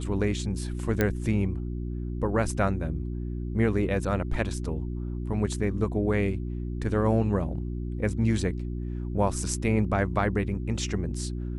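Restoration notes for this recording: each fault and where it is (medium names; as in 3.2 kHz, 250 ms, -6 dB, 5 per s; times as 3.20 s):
hum 60 Hz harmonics 6 -32 dBFS
1.01 s: pop -10 dBFS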